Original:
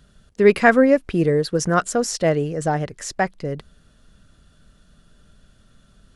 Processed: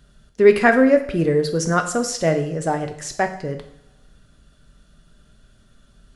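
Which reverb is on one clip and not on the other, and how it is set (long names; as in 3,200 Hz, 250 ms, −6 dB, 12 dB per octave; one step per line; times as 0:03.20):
coupled-rooms reverb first 0.63 s, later 2 s, from −24 dB, DRR 5.5 dB
level −1 dB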